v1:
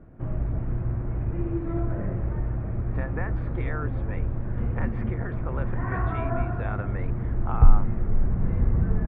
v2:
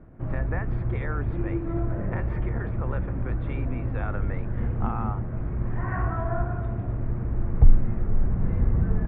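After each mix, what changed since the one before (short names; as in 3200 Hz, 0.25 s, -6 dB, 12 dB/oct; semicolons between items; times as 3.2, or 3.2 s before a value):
speech: entry -2.65 s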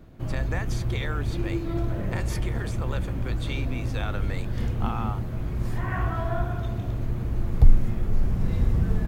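master: remove LPF 1900 Hz 24 dB/oct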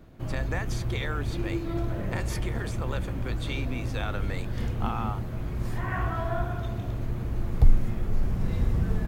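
background: add low shelf 330 Hz -3 dB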